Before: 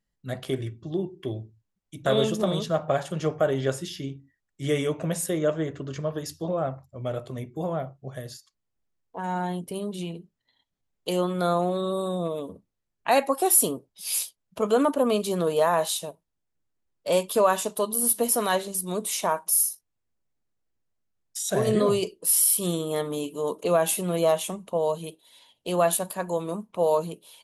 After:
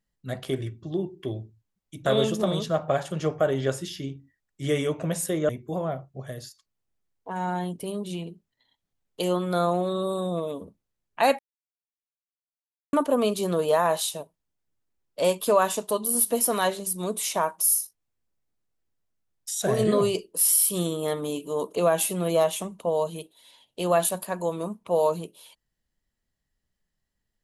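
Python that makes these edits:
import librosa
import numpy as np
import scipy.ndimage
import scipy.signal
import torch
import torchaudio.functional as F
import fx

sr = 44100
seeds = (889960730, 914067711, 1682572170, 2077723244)

y = fx.edit(x, sr, fx.cut(start_s=5.49, length_s=1.88),
    fx.silence(start_s=13.27, length_s=1.54), tone=tone)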